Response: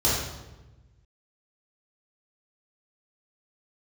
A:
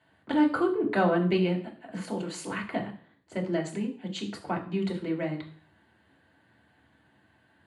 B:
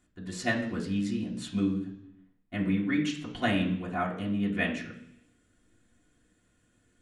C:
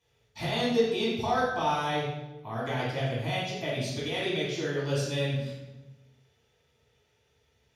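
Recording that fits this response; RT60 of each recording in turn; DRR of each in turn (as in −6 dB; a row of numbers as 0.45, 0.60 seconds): C; 0.50, 0.70, 1.1 seconds; −1.5, −5.5, −8.0 decibels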